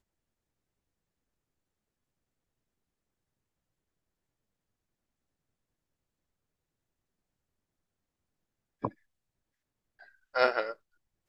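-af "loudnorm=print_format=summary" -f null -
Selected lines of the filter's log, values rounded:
Input Integrated:    -31.8 LUFS
Input True Peak:      -8.2 dBTP
Input LRA:            12.5 LU
Input Threshold:     -43.4 LUFS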